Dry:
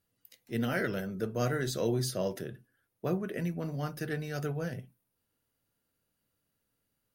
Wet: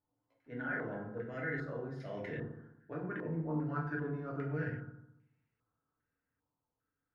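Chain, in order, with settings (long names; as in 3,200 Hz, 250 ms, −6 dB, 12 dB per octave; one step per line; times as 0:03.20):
source passing by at 0:02.77, 19 m/s, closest 6.1 metres
reversed playback
downward compressor 12 to 1, threshold −50 dBFS, peak gain reduction 22.5 dB
reversed playback
feedback delay network reverb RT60 0.8 s, low-frequency decay 1.25×, high-frequency decay 0.6×, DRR −2.5 dB
low-pass on a step sequencer 2.5 Hz 930–2,200 Hz
level +8 dB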